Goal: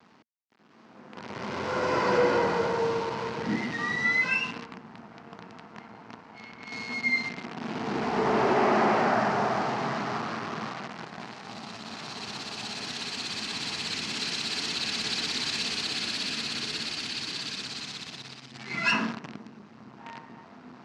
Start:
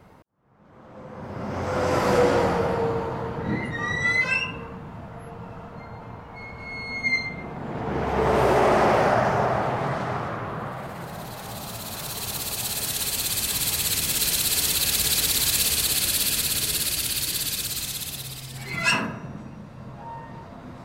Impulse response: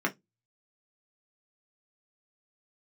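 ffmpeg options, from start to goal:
-filter_complex "[0:a]asettb=1/sr,asplit=3[s0][s1][s2];[s0]atrim=end=1.154[s3];[s1]atrim=start=1.15:end=3.47,asetpts=PTS-STARTPTS,afade=t=in:d=0.004:c=qsin,afade=t=out:st=2.316:d=0.004:c=qsin,aecho=1:1:2:0.5,atrim=end_sample=102312[s4];[s2]atrim=start=3.466[s5];[s3][s4]acrossfade=d=0.004:c1=hsin:c2=qsin[s6];[s6][s5]acrossfade=d=0.004:c1=qsin:c2=hsin,acrusher=bits=6:dc=4:mix=0:aa=0.000001,highpass=200,equalizer=f=230:t=q:w=4:g=7,equalizer=f=550:t=q:w=4:g=-8,equalizer=f=3500:t=q:w=4:g=-4,lowpass=f=5200:w=0.5412,lowpass=f=5200:w=1.3066,asoftclip=type=tanh:threshold=0.376,volume=0.794"

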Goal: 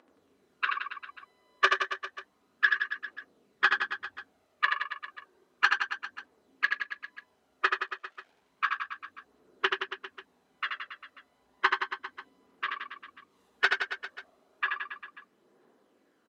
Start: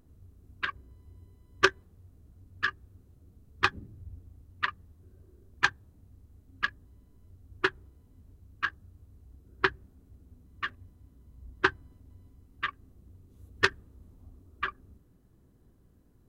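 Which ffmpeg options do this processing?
-filter_complex "[0:a]aemphasis=mode=production:type=bsi,asplit=2[s0][s1];[s1]acompressor=threshold=0.00631:ratio=6,volume=1.06[s2];[s0][s2]amix=inputs=2:normalize=0,asettb=1/sr,asplit=3[s3][s4][s5];[s3]atrim=end=7.824[s6];[s4]atrim=start=7.82:end=8.32,asetpts=PTS-STARTPTS,afade=t=in:d=0.004:c=qsin,afade=t=out:st=0.496:d=0.004:c=qsin,acrusher=bits=6:dc=4:mix=0:aa=0.000001[s7];[s5]atrim=start=8.316[s8];[s6][s7]acrossfade=d=0.004:c1=hsin:c2=qsin[s9];[s9][s8]acrossfade=d=0.004:c1=qsin:c2=hsin,flanger=delay=3.5:depth=1.5:regen=-43:speed=1:shape=sinusoidal,asoftclip=type=hard:threshold=0.158,aphaser=in_gain=1:out_gain=1:delay=1.8:decay=0.44:speed=0.32:type=triangular,highpass=480,lowpass=2900,aecho=1:1:80|172|277.8|399.5|539.4:0.631|0.398|0.251|0.158|0.1,volume=1.58"

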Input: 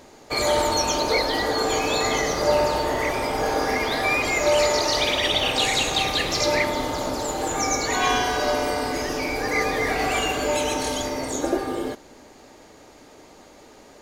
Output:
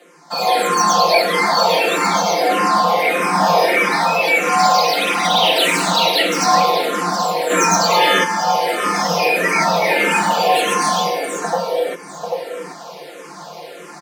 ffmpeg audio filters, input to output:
-filter_complex "[0:a]acrossover=split=480|1800[s0][s1][s2];[s2]asoftclip=type=tanh:threshold=0.0531[s3];[s0][s1][s3]amix=inputs=3:normalize=0,aecho=1:1:5.6:0.99,asplit=3[s4][s5][s6];[s4]afade=t=out:st=7.49:d=0.02[s7];[s5]acontrast=87,afade=t=in:st=7.49:d=0.02,afade=t=out:st=8.23:d=0.02[s8];[s6]afade=t=in:st=8.23:d=0.02[s9];[s7][s8][s9]amix=inputs=3:normalize=0,aecho=1:1:790:0.178,dynaudnorm=f=140:g=7:m=3.98,afreqshift=150,bandreject=f=6900:w=7.2,asplit=2[s10][s11];[s11]afreqshift=-1.6[s12];[s10][s12]amix=inputs=2:normalize=1,volume=1.19"

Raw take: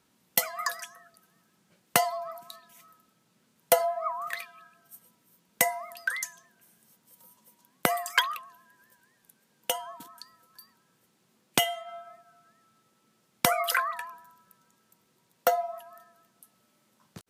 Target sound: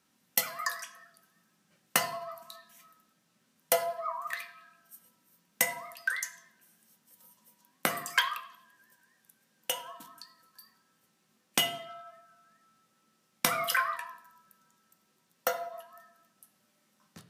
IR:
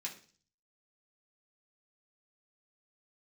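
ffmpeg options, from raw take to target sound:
-filter_complex "[0:a]asplit=2[s0][s1];[1:a]atrim=start_sample=2205,asetrate=31752,aresample=44100[s2];[s1][s2]afir=irnorm=-1:irlink=0,volume=1[s3];[s0][s3]amix=inputs=2:normalize=0,volume=0.422"

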